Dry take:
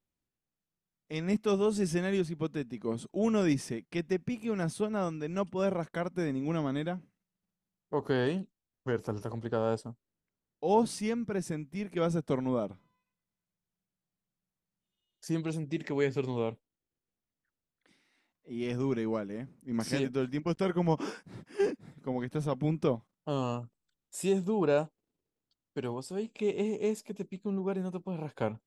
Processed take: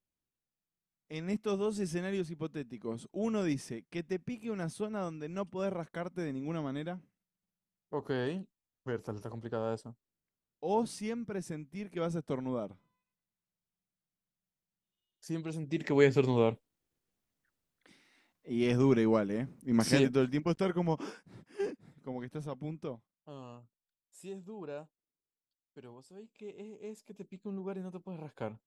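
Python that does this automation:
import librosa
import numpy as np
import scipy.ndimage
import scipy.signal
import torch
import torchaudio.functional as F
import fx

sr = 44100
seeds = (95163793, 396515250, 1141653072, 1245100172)

y = fx.gain(x, sr, db=fx.line((15.5, -5.0), (15.99, 5.0), (20.0, 5.0), (21.2, -6.5), (22.26, -6.5), (23.34, -16.0), (26.76, -16.0), (27.32, -7.0)))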